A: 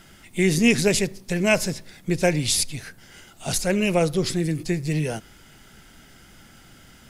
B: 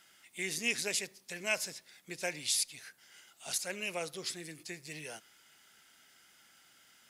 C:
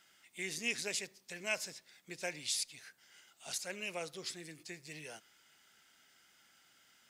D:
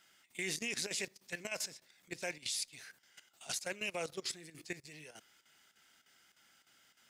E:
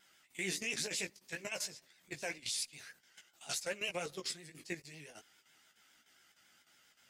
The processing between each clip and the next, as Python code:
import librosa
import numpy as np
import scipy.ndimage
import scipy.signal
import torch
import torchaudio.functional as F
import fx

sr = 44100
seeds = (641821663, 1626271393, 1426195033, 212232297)

y1 = fx.highpass(x, sr, hz=1500.0, slope=6)
y1 = F.gain(torch.from_numpy(y1), -8.5).numpy()
y2 = fx.peak_eq(y1, sr, hz=11000.0, db=-7.5, octaves=0.33)
y2 = F.gain(torch.from_numpy(y2), -3.5).numpy()
y3 = fx.level_steps(y2, sr, step_db=15)
y3 = fx.chopper(y3, sr, hz=3.3, depth_pct=65, duty_pct=85)
y3 = F.gain(torch.from_numpy(y3), 7.5).numpy()
y4 = fx.chorus_voices(y3, sr, voices=4, hz=0.48, base_ms=16, depth_ms=4.9, mix_pct=40)
y4 = fx.vibrato(y4, sr, rate_hz=7.3, depth_cents=77.0)
y4 = F.gain(torch.from_numpy(y4), 3.0).numpy()